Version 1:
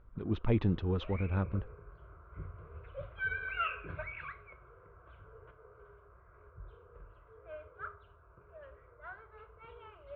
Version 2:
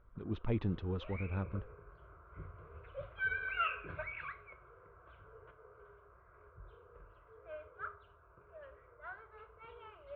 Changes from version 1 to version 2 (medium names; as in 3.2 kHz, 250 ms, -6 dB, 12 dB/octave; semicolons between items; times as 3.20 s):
speech -5.5 dB; background: add bass shelf 250 Hz -5.5 dB